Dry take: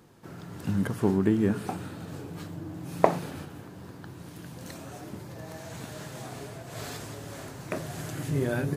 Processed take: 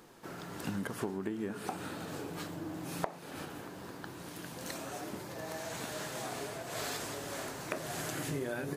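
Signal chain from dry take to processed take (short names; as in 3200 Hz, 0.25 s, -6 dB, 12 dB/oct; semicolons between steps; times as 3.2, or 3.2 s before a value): bell 97 Hz -13 dB 2.3 oct; compressor 12:1, threshold -36 dBFS, peak gain reduction 22.5 dB; gain +3.5 dB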